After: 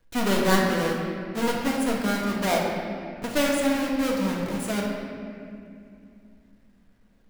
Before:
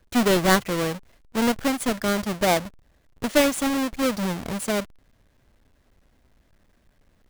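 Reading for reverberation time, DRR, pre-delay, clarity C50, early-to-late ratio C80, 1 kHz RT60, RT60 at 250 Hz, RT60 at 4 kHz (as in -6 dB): 2.5 s, -3.0 dB, 4 ms, 1.0 dB, 2.5 dB, 2.2 s, 3.9 s, 1.6 s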